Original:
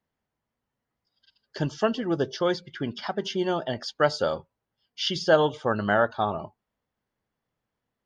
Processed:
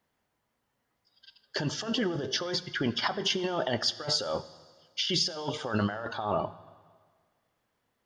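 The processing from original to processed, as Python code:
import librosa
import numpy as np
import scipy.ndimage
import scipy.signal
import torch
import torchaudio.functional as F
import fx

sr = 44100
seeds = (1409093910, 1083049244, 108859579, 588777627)

y = fx.low_shelf(x, sr, hz=280.0, db=-6.5)
y = fx.over_compress(y, sr, threshold_db=-33.0, ratio=-1.0)
y = fx.rev_fdn(y, sr, rt60_s=1.7, lf_ratio=0.9, hf_ratio=0.95, size_ms=57.0, drr_db=14.0)
y = y * 10.0 ** (2.0 / 20.0)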